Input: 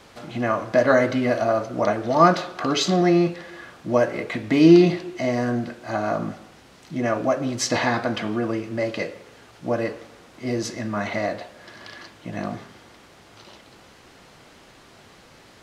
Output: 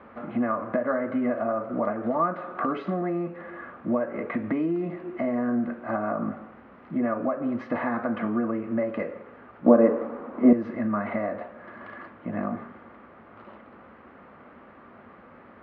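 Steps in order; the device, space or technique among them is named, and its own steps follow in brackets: bass amplifier (compression 5:1, threshold -26 dBFS, peak gain reduction 16.5 dB; cabinet simulation 61–2000 Hz, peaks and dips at 130 Hz -9 dB, 230 Hz +9 dB, 560 Hz +4 dB, 1.2 kHz +7 dB); 9.66–10.53 s: graphic EQ 125/250/500/1000 Hz -3/+10/+9/+7 dB; trim -1 dB

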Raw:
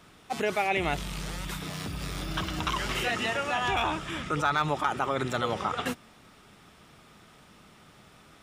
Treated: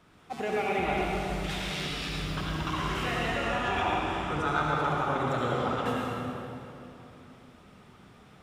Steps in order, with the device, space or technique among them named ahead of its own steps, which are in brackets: 1.44–2.09 s: frequency weighting D; swimming-pool hall (reverberation RT60 3.1 s, pre-delay 65 ms, DRR -4 dB; treble shelf 3 kHz -7.5 dB); trim -4.5 dB

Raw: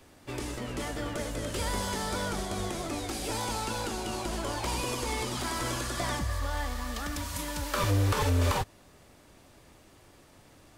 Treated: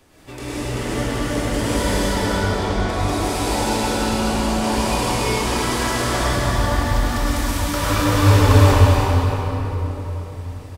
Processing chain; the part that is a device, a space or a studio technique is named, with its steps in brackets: 1.96–2.89 s: distance through air 110 m; delay 260 ms -7 dB; cave (delay 328 ms -8.5 dB; reverberation RT60 3.9 s, pre-delay 97 ms, DRR -9.5 dB); trim +1 dB

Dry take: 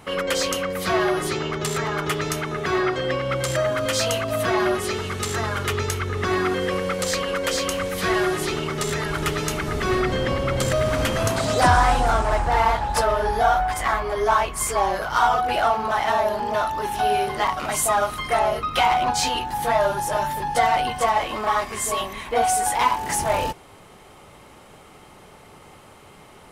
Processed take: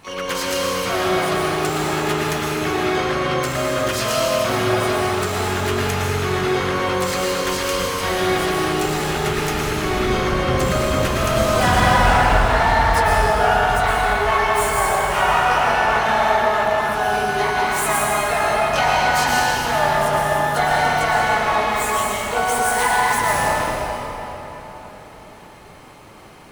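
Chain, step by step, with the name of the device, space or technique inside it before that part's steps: shimmer-style reverb (harmony voices +12 st -6 dB; reverberation RT60 4.2 s, pre-delay 105 ms, DRR -5 dB); trim -3.5 dB

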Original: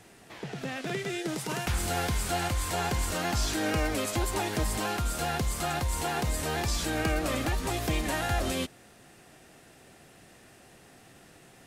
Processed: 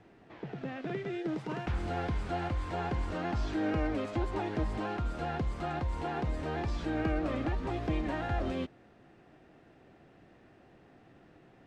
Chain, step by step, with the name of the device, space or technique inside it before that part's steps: phone in a pocket (low-pass 3.9 kHz 12 dB/octave; peaking EQ 310 Hz +4 dB 0.39 oct; treble shelf 2.2 kHz -11.5 dB); trim -3 dB

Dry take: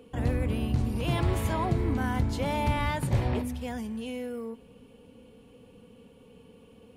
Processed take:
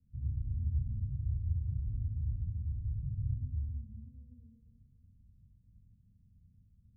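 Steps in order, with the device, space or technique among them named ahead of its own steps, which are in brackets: club heard from the street (peak limiter -24.5 dBFS, peak gain reduction 9 dB; low-pass 120 Hz 24 dB/octave; reverberation RT60 1.4 s, pre-delay 24 ms, DRR -0.5 dB); trim -3 dB

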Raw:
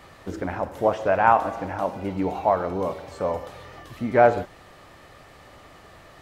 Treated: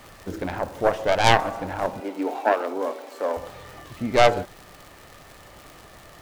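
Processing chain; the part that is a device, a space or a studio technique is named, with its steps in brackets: record under a worn stylus (tracing distortion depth 0.43 ms; crackle 110 per s -34 dBFS; pink noise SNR 29 dB); 2.00–3.37 s: elliptic high-pass 240 Hz, stop band 40 dB

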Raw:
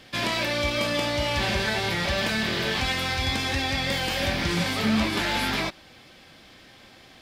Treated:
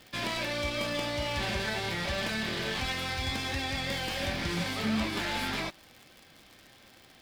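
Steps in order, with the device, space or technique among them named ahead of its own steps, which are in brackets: record under a worn stylus (tracing distortion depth 0.03 ms; crackle 130 per s -34 dBFS; white noise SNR 40 dB); trim -6.5 dB

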